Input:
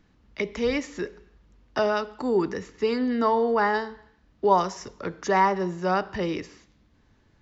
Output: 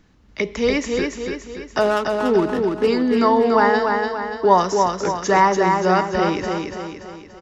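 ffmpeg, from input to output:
ffmpeg -i in.wav -filter_complex "[0:a]equalizer=frequency=6800:width_type=o:width=0.81:gain=4,asplit=3[link_01][link_02][link_03];[link_01]afade=type=out:start_time=1.8:duration=0.02[link_04];[link_02]adynamicsmooth=sensitivity=4:basefreq=590,afade=type=in:start_time=1.8:duration=0.02,afade=type=out:start_time=2.86:duration=0.02[link_05];[link_03]afade=type=in:start_time=2.86:duration=0.02[link_06];[link_04][link_05][link_06]amix=inputs=3:normalize=0,aecho=1:1:288|576|864|1152|1440|1728:0.631|0.309|0.151|0.0742|0.0364|0.0178,volume=5.5dB" out.wav

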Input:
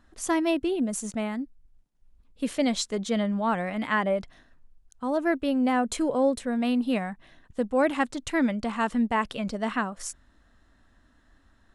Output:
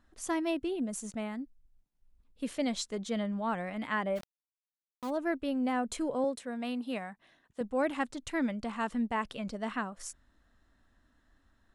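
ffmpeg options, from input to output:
ffmpeg -i in.wav -filter_complex "[0:a]asplit=3[link_01][link_02][link_03];[link_01]afade=type=out:start_time=4.15:duration=0.02[link_04];[link_02]aeval=exprs='val(0)*gte(abs(val(0)),0.02)':channel_layout=same,afade=type=in:start_time=4.15:duration=0.02,afade=type=out:start_time=5.09:duration=0.02[link_05];[link_03]afade=type=in:start_time=5.09:duration=0.02[link_06];[link_04][link_05][link_06]amix=inputs=3:normalize=0,asettb=1/sr,asplit=3[link_07][link_08][link_09];[link_07]atrim=end=6.244[link_10];[link_08]atrim=start=6.24:end=7.61,asetpts=PTS-STARTPTS,afade=type=in:duration=0.004:curve=qsin,afade=type=out:start_time=1.366:duration=0.004:curve=qsin,highpass=frequency=300:poles=1[link_11];[link_09]atrim=start=7.606[link_12];[link_10][link_11]acrossfade=duration=0.004:curve1=hsin:curve2=qsin[link_13];[link_13][link_12]acrossfade=duration=0.004:curve1=qsin:curve2=hsin,volume=-7dB" out.wav

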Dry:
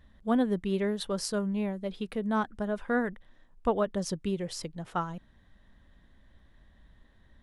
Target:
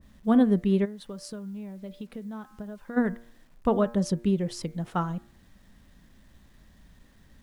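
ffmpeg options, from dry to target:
ffmpeg -i in.wav -filter_complex "[0:a]equalizer=frequency=190:width_type=o:width=1.6:gain=6.5,bandreject=frequency=117.2:width_type=h:width=4,bandreject=frequency=234.4:width_type=h:width=4,bandreject=frequency=351.6:width_type=h:width=4,bandreject=frequency=468.8:width_type=h:width=4,bandreject=frequency=586:width_type=h:width=4,bandreject=frequency=703.2:width_type=h:width=4,bandreject=frequency=820.4:width_type=h:width=4,bandreject=frequency=937.6:width_type=h:width=4,bandreject=frequency=1054.8:width_type=h:width=4,bandreject=frequency=1172:width_type=h:width=4,bandreject=frequency=1289.2:width_type=h:width=4,bandreject=frequency=1406.4:width_type=h:width=4,bandreject=frequency=1523.6:width_type=h:width=4,bandreject=frequency=1640.8:width_type=h:width=4,bandreject=frequency=1758:width_type=h:width=4,bandreject=frequency=1875.2:width_type=h:width=4,bandreject=frequency=1992.4:width_type=h:width=4,bandreject=frequency=2109.6:width_type=h:width=4,bandreject=frequency=2226.8:width_type=h:width=4,bandreject=frequency=2344:width_type=h:width=4,bandreject=frequency=2461.2:width_type=h:width=4,asplit=3[link_01][link_02][link_03];[link_01]afade=type=out:start_time=0.84:duration=0.02[link_04];[link_02]acompressor=threshold=-37dB:ratio=12,afade=type=in:start_time=0.84:duration=0.02,afade=type=out:start_time=2.96:duration=0.02[link_05];[link_03]afade=type=in:start_time=2.96:duration=0.02[link_06];[link_04][link_05][link_06]amix=inputs=3:normalize=0,acrusher=bits=10:mix=0:aa=0.000001,adynamicequalizer=threshold=0.00631:dfrequency=1600:dqfactor=0.7:tfrequency=1600:tqfactor=0.7:attack=5:release=100:ratio=0.375:range=1.5:mode=cutabove:tftype=highshelf,volume=1.5dB" out.wav

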